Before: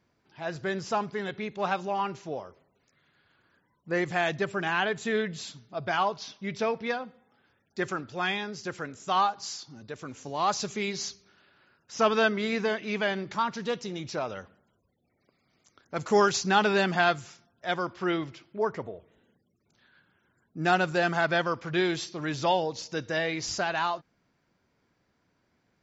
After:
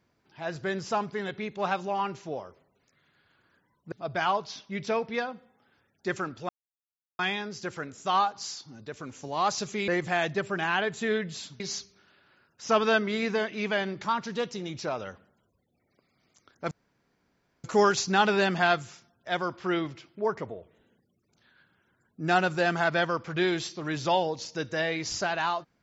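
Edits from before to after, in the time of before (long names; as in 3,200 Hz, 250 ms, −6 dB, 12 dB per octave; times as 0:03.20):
0:03.92–0:05.64: move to 0:10.90
0:08.21: splice in silence 0.70 s
0:16.01: splice in room tone 0.93 s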